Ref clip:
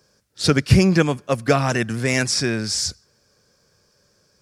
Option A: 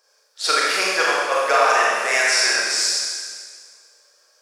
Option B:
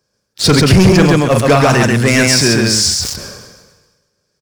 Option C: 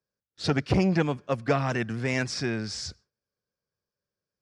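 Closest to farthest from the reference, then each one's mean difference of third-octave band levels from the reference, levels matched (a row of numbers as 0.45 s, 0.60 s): C, B, A; 3.5 dB, 7.0 dB, 13.5 dB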